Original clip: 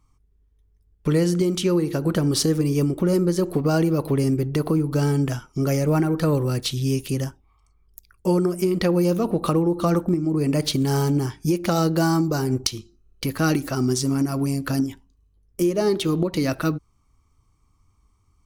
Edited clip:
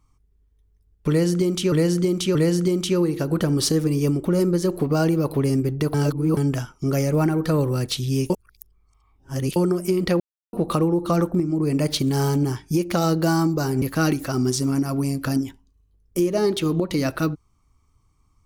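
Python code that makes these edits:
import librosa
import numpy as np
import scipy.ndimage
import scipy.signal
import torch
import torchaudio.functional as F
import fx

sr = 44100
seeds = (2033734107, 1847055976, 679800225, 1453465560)

y = fx.edit(x, sr, fx.repeat(start_s=1.09, length_s=0.63, count=3),
    fx.reverse_span(start_s=4.68, length_s=0.43),
    fx.reverse_span(start_s=7.04, length_s=1.26),
    fx.silence(start_s=8.94, length_s=0.33),
    fx.cut(start_s=12.56, length_s=0.69), tone=tone)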